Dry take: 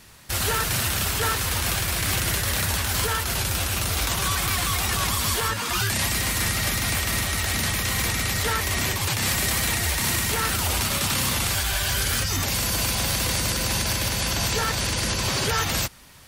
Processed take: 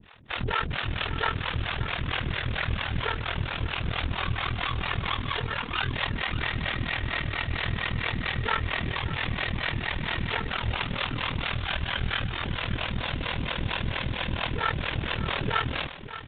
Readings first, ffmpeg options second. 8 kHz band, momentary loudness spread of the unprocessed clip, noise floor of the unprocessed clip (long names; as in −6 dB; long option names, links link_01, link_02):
below −40 dB, 2 LU, −28 dBFS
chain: -filter_complex "[0:a]aeval=exprs='clip(val(0),-1,0.0422)':channel_layout=same,aresample=8000,aresample=44100,acrossover=split=420[link_01][link_02];[link_01]aeval=exprs='val(0)*(1-1/2+1/2*cos(2*PI*4.4*n/s))':channel_layout=same[link_03];[link_02]aeval=exprs='val(0)*(1-1/2-1/2*cos(2*PI*4.4*n/s))':channel_layout=same[link_04];[link_03][link_04]amix=inputs=2:normalize=0,asplit=2[link_05][link_06];[link_06]aecho=0:1:581:0.237[link_07];[link_05][link_07]amix=inputs=2:normalize=0,aeval=exprs='val(0)*sin(2*PI*20*n/s)':channel_layout=same,volume=6dB"